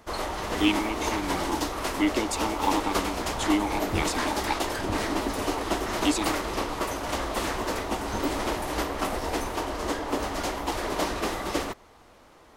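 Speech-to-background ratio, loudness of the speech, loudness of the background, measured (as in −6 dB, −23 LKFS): −0.5 dB, −30.0 LKFS, −29.5 LKFS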